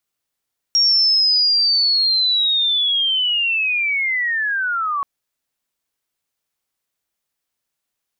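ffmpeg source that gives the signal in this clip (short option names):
-f lavfi -i "aevalsrc='pow(10,(-11.5-7*t/4.28)/20)*sin(2*PI*(5600*t-4500*t*t/(2*4.28)))':d=4.28:s=44100"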